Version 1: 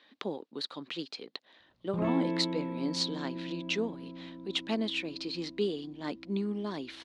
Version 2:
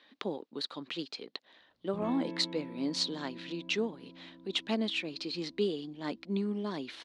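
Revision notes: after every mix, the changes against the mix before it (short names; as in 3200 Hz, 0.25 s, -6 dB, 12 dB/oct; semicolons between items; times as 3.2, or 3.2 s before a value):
background -9.0 dB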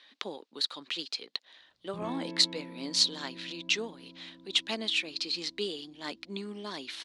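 speech: add tilt +3.5 dB/oct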